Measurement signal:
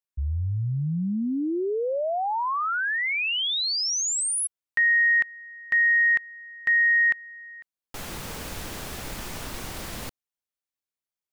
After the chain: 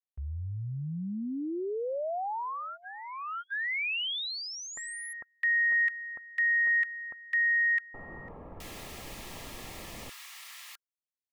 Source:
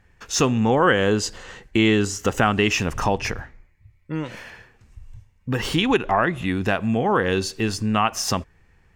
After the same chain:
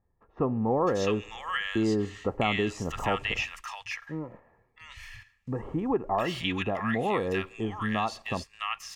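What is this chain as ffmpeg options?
ffmpeg -i in.wav -filter_complex "[0:a]asuperstop=centerf=1500:order=12:qfactor=7.5,lowshelf=frequency=370:gain=-5,acrossover=split=1200[link_01][link_02];[link_02]adelay=660[link_03];[link_01][link_03]amix=inputs=2:normalize=0,agate=range=-7dB:threshold=-47dB:ratio=16:release=30:detection=rms,acrossover=split=3500[link_04][link_05];[link_05]acompressor=threshold=-39dB:ratio=6:attack=0.5:release=239:detection=peak[link_06];[link_04][link_06]amix=inputs=2:normalize=0,volume=-4.5dB" out.wav

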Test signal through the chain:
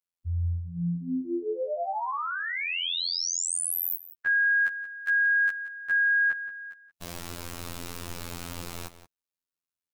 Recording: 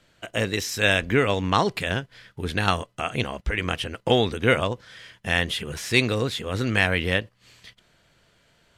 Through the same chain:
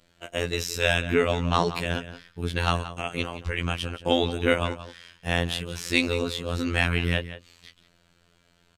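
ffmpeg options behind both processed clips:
ffmpeg -i in.wav -filter_complex "[0:a]equalizer=frequency=1700:width=1.5:gain=-2.5,afftfilt=real='hypot(re,im)*cos(PI*b)':imag='0':win_size=2048:overlap=0.75,asplit=2[link_01][link_02];[link_02]adelay=174.9,volume=-13dB,highshelf=frequency=4000:gain=-3.94[link_03];[link_01][link_03]amix=inputs=2:normalize=0,volume=1.5dB" out.wav

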